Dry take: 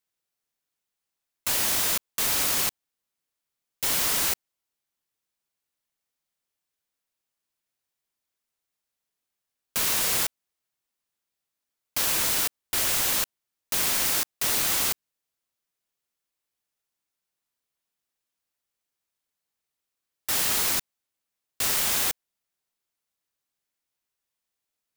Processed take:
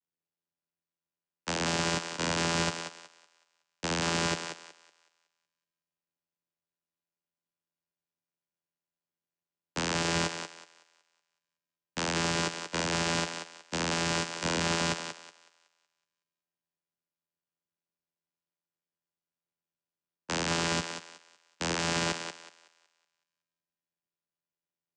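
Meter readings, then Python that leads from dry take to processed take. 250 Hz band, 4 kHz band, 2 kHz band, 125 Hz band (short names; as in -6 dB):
+8.0 dB, -3.5 dB, -0.5 dB, +9.0 dB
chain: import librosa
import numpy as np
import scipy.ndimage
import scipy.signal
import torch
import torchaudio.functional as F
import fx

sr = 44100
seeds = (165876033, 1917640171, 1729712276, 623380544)

y = fx.vocoder(x, sr, bands=8, carrier='saw', carrier_hz=83.8)
y = fx.echo_thinned(y, sr, ms=186, feedback_pct=43, hz=410.0, wet_db=-4.0)
y = fx.upward_expand(y, sr, threshold_db=-48.0, expansion=1.5)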